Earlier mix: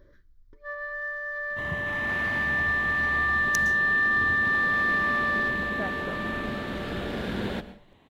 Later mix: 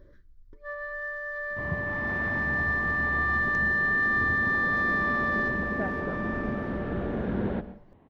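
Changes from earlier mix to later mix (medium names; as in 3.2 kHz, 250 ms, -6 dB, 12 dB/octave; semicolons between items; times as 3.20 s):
second sound: add low-pass 1.5 kHz 12 dB/octave; master: add tilt shelf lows +3 dB, about 770 Hz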